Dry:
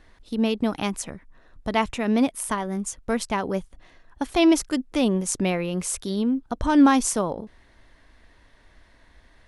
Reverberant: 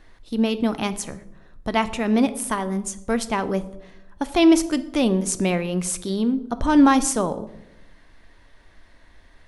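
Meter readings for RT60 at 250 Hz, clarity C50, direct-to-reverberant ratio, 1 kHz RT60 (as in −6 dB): 1.2 s, 15.5 dB, 11.5 dB, 0.75 s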